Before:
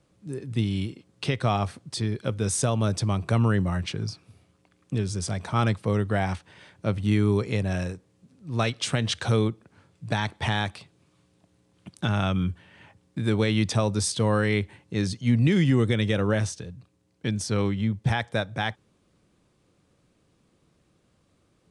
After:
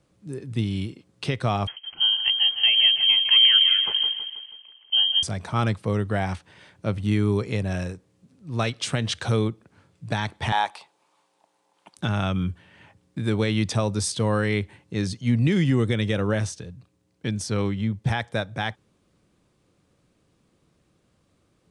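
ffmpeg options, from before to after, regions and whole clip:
-filter_complex "[0:a]asettb=1/sr,asplit=3[a][b][c];[a]atrim=end=1.674[d];[b]atrim=start=1.67:end=5.23,asetpts=PTS-STARTPTS,afade=t=in:d=0.004:c=qsin,afade=t=out:st=3.556:d=0.004:c=qsin,lowshelf=f=340:g=7,aecho=1:1:161|322|483|644|805|966:0.355|0.177|0.0887|0.0444|0.0222|0.0111,atrim=end_sample=156996,lowpass=f=2.8k:t=q:w=0.5098,lowpass=f=2.8k:t=q:w=0.6013,lowpass=f=2.8k:t=q:w=0.9,lowpass=f=2.8k:t=q:w=2.563,afreqshift=-3300[e];[c]atrim=start=5.226[f];[d][e]acrossfade=d=0.004:c1=hsin:c2=qsin[g];[g][f]acrossfade=d=0.004:c1=qsin:c2=hsin,asettb=1/sr,asplit=3[h][i][j];[h]atrim=end=10.524[k];[i]atrim=start=10.52:end=11.97,asetpts=PTS-STARTPTS,afade=t=in:d=0.004:c=qsin,afade=t=out:st=1.446:d=0.004:c=qsin,highpass=510,equalizer=f=880:w=2.8:g=13.5[l];[j]atrim=start=11.966[m];[k][l]acrossfade=d=0.004:c1=hsin:c2=qsin[n];[n][m]acrossfade=d=0.004:c1=qsin:c2=hsin"

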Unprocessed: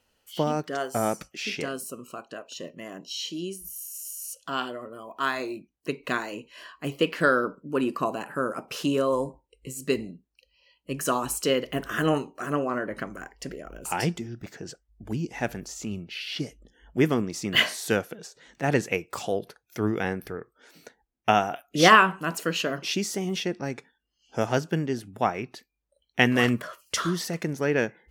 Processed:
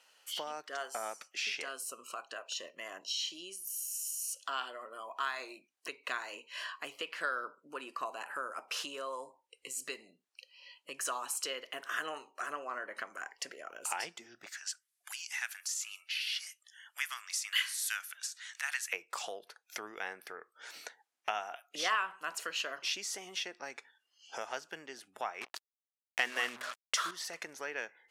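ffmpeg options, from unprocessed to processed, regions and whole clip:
-filter_complex "[0:a]asettb=1/sr,asplit=3[a][b][c];[a]atrim=end=14.494[d];[b]atrim=start=14.49:end=18.93,asetpts=PTS-STARTPTS,afade=t=in:d=0.004:c=qsin,afade=t=out:st=4.436:d=0.004:c=qsin,highpass=f=1.3k:w=0.5412,highpass=f=1.3k:w=1.3066,equalizer=f=11k:t=o:w=0.85:g=12[e];[c]atrim=start=18.926[f];[d][e]acrossfade=d=0.004:c1=hsin:c2=qsin[g];[g][f]acrossfade=d=0.004:c1=qsin:c2=hsin,asettb=1/sr,asplit=3[h][i][j];[h]atrim=end=25.414[k];[i]atrim=start=25.41:end=27.11,asetpts=PTS-STARTPTS,afade=t=in:d=0.004:c=qsin,afade=t=out:st=1.696:d=0.004:c=qsin,bandreject=f=62.24:t=h:w=4,bandreject=f=124.48:t=h:w=4,bandreject=f=186.72:t=h:w=4,bandreject=f=248.96:t=h:w=4,bandreject=f=311.2:t=h:w=4,bandreject=f=373.44:t=h:w=4,bandreject=f=435.68:t=h:w=4,acontrast=52,acrusher=bits=4:mix=0:aa=0.5[l];[j]atrim=start=27.106[m];[k][l]acrossfade=d=0.004:c1=hsin:c2=qsin[n];[n][m]acrossfade=d=0.004:c1=qsin:c2=hsin,lowpass=11k,acompressor=threshold=-46dB:ratio=2.5,highpass=850,volume=7.5dB"

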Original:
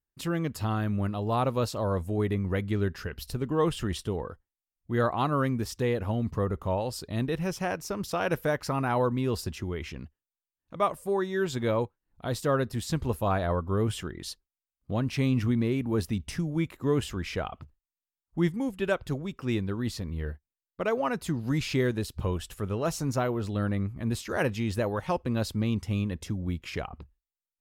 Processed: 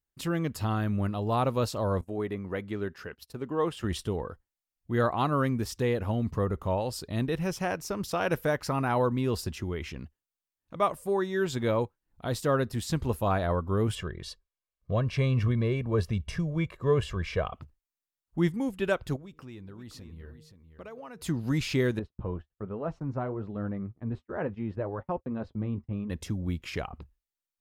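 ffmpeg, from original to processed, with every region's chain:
-filter_complex "[0:a]asettb=1/sr,asplit=3[a][b][c];[a]atrim=end=2.014[d];[b]atrim=start=2.01:end=3.84,asetpts=PTS-STARTPTS,afade=t=in:d=0.004:c=qsin,afade=t=out:st=1.826:d=0.004:c=qsin,highpass=f=350:p=1,highshelf=f=2.5k:g=-8,agate=range=-17dB:threshold=-49dB:ratio=16:release=100:detection=peak[e];[c]atrim=start=3.836[f];[d][e]acrossfade=d=0.004:c1=hsin:c2=qsin[g];[g][f]acrossfade=d=0.004:c1=qsin:c2=hsin,asettb=1/sr,asplit=3[h][i][j];[h]atrim=end=13.954[k];[i]atrim=start=13.95:end=17.53,asetpts=PTS-STARTPTS,afade=t=in:d=0.004:c=qsin,afade=t=out:st=3.576:d=0.004:c=qsin,aemphasis=mode=reproduction:type=50fm,aecho=1:1:1.8:0.68,atrim=end_sample=157878[l];[j]atrim=start=17.526[m];[k][l]acrossfade=d=0.004:c1=hsin:c2=qsin[n];[n][m]acrossfade=d=0.004:c1=qsin:c2=hsin,asettb=1/sr,asplit=3[o][p][q];[o]atrim=end=19.164[r];[p]atrim=start=19.16:end=21.22,asetpts=PTS-STARTPTS,afade=t=in:d=0.004:c=qsin,afade=t=out:st=2.056:d=0.004:c=qsin,bandreject=f=154.8:t=h:w=4,bandreject=f=309.6:t=h:w=4,bandreject=f=464.4:t=h:w=4,acompressor=threshold=-46dB:ratio=3:attack=3.2:release=140:knee=1:detection=peak,aecho=1:1:521:0.316,atrim=end_sample=90846[s];[q]atrim=start=21.216[t];[r][s]acrossfade=d=0.004:c1=hsin:c2=qsin[u];[u][t]acrossfade=d=0.004:c1=qsin:c2=hsin,asettb=1/sr,asplit=3[v][w][x];[v]atrim=end=21.994[y];[w]atrim=start=21.99:end=26.1,asetpts=PTS-STARTPTS,afade=t=in:d=0.004:c=qsin,afade=t=out:st=4.106:d=0.004:c=qsin,agate=range=-37dB:threshold=-37dB:ratio=16:release=100:detection=peak,lowpass=1.3k,flanger=delay=3.9:depth=3.4:regen=-59:speed=1.2:shape=triangular[z];[x]atrim=start=26.096[aa];[y][z]acrossfade=d=0.004:c1=hsin:c2=qsin[ab];[ab][aa]acrossfade=d=0.004:c1=qsin:c2=hsin"

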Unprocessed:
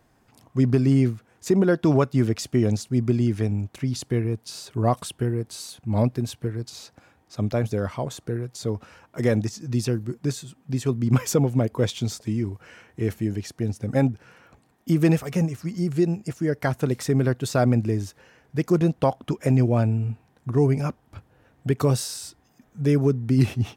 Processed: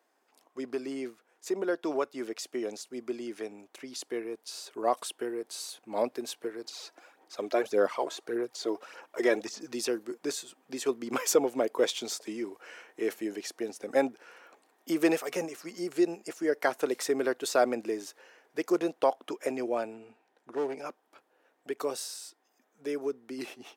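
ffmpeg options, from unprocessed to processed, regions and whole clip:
-filter_complex "[0:a]asettb=1/sr,asplit=3[a][b][c];[a]atrim=end=6.644[d];[b]atrim=start=6.64:end=9.72,asetpts=PTS-STARTPTS,afade=t=in:d=0.004:c=qsin,afade=t=out:st=3.076:d=0.004:c=qsin,acrossover=split=5900[e][f];[f]acompressor=threshold=-52dB:ratio=4:attack=1:release=60[g];[e][g]amix=inputs=2:normalize=0,aphaser=in_gain=1:out_gain=1:delay=3.1:decay=0.53:speed=1.7:type=sinusoidal[h];[c]atrim=start=9.716[i];[d][h]acrossfade=d=0.004:c1=hsin:c2=qsin[j];[j][i]acrossfade=d=0.004:c1=qsin:c2=hsin,asettb=1/sr,asplit=3[k][l][m];[k]atrim=end=19.944[n];[l]atrim=start=19.94:end=20.86,asetpts=PTS-STARTPTS,afade=t=in:d=0.004:c=qsin,afade=t=out:st=0.916:d=0.004:c=qsin,highshelf=f=9.2k:g=-11.5,volume=16.5dB,asoftclip=hard,volume=-16.5dB,bandreject=f=1.1k:w=8.7[o];[m]atrim=start=20.856[p];[n][o]acrossfade=d=0.004:c1=hsin:c2=qsin[q];[q][p]acrossfade=d=0.004:c1=qsin:c2=hsin,highpass=f=350:w=0.5412,highpass=f=350:w=1.3066,dynaudnorm=f=320:g=31:m=8.5dB,volume=-7.5dB"

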